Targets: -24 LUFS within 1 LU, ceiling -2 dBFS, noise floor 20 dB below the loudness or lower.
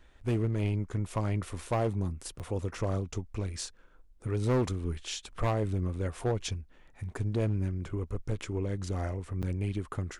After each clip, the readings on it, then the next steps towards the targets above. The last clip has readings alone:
clipped 1.6%; flat tops at -23.0 dBFS; dropouts 2; longest dropout 7.8 ms; loudness -33.5 LUFS; peak -23.0 dBFS; loudness target -24.0 LUFS
-> clip repair -23 dBFS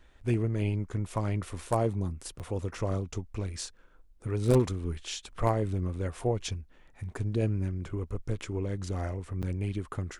clipped 0.0%; dropouts 2; longest dropout 7.8 ms
-> interpolate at 2.39/9.42, 7.8 ms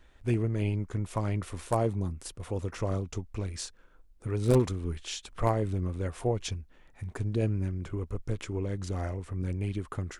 dropouts 0; loudness -32.0 LUFS; peak -14.0 dBFS; loudness target -24.0 LUFS
-> gain +8 dB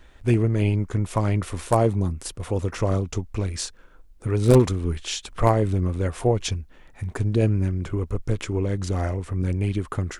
loudness -24.0 LUFS; peak -6.0 dBFS; noise floor -50 dBFS

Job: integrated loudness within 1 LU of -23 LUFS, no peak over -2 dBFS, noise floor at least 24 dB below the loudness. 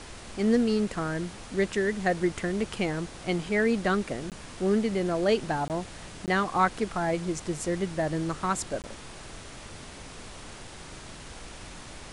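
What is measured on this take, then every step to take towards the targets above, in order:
dropouts 4; longest dropout 18 ms; noise floor -44 dBFS; noise floor target -53 dBFS; loudness -28.5 LUFS; peak -10.0 dBFS; loudness target -23.0 LUFS
-> interpolate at 4.3/5.68/6.26/8.82, 18 ms; noise print and reduce 9 dB; gain +5.5 dB

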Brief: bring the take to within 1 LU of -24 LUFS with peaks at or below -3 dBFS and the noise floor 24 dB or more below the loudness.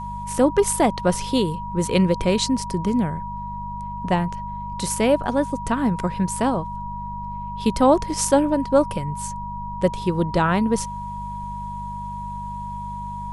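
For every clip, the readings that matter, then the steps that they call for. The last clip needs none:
hum 50 Hz; harmonics up to 200 Hz; hum level -33 dBFS; steady tone 960 Hz; tone level -30 dBFS; loudness -23.0 LUFS; peak -4.0 dBFS; loudness target -24.0 LUFS
-> de-hum 50 Hz, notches 4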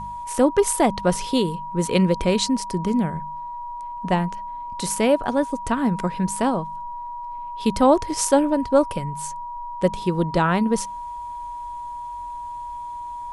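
hum none; steady tone 960 Hz; tone level -30 dBFS
-> notch 960 Hz, Q 30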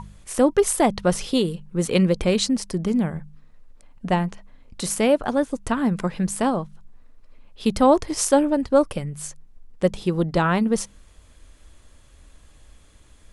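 steady tone none; loudness -22.0 LUFS; peak -4.5 dBFS; loudness target -24.0 LUFS
-> gain -2 dB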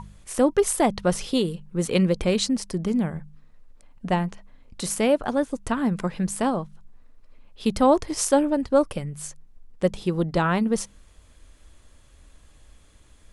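loudness -24.0 LUFS; peak -6.5 dBFS; noise floor -54 dBFS

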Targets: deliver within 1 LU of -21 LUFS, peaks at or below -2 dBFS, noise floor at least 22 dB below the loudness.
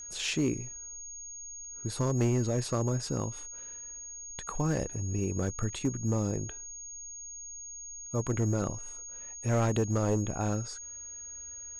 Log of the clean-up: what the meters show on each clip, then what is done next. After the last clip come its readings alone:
clipped 1.1%; flat tops at -21.5 dBFS; steady tone 6600 Hz; tone level -41 dBFS; loudness -33.0 LUFS; peak -21.5 dBFS; loudness target -21.0 LUFS
-> clip repair -21.5 dBFS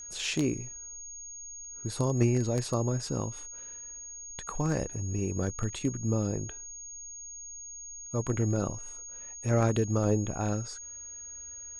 clipped 0.0%; steady tone 6600 Hz; tone level -41 dBFS
-> notch 6600 Hz, Q 30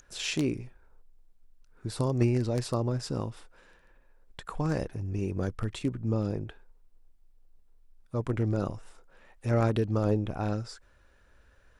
steady tone none; loudness -31.0 LUFS; peak -12.5 dBFS; loudness target -21.0 LUFS
-> gain +10 dB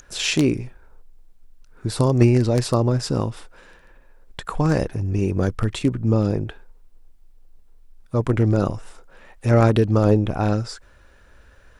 loudness -21.0 LUFS; peak -2.5 dBFS; noise floor -52 dBFS

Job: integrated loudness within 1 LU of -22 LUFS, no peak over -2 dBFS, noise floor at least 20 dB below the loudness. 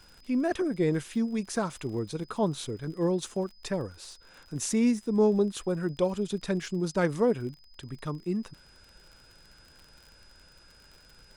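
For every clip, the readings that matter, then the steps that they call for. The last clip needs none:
ticks 48/s; steady tone 5000 Hz; tone level -58 dBFS; loudness -29.5 LUFS; peak -13.0 dBFS; loudness target -22.0 LUFS
-> de-click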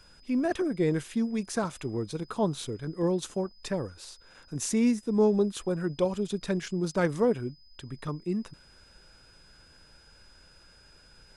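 ticks 0.088/s; steady tone 5000 Hz; tone level -58 dBFS
-> notch 5000 Hz, Q 30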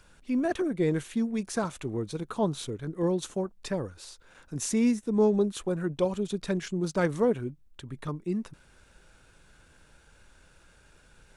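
steady tone none; loudness -29.5 LUFS; peak -13.5 dBFS; loudness target -22.0 LUFS
-> gain +7.5 dB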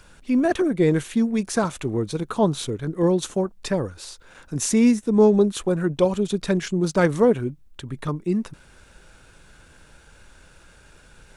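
loudness -22.0 LUFS; peak -6.0 dBFS; noise floor -52 dBFS

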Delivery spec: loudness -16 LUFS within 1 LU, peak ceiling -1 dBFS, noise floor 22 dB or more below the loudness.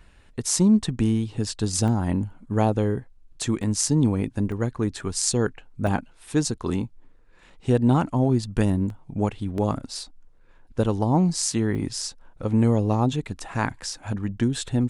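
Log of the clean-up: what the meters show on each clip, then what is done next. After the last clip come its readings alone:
dropouts 7; longest dropout 2.0 ms; loudness -24.5 LUFS; peak -5.5 dBFS; loudness target -16.0 LUFS
-> interpolate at 1.88/3.63/4.52/5.87/8.9/9.58/11.75, 2 ms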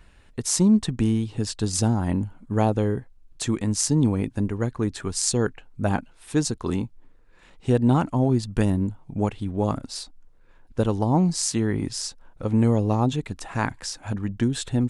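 dropouts 0; loudness -24.5 LUFS; peak -5.5 dBFS; loudness target -16.0 LUFS
-> gain +8.5 dB; limiter -1 dBFS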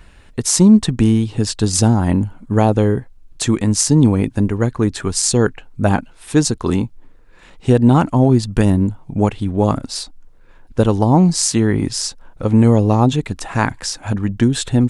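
loudness -16.0 LUFS; peak -1.0 dBFS; noise floor -44 dBFS

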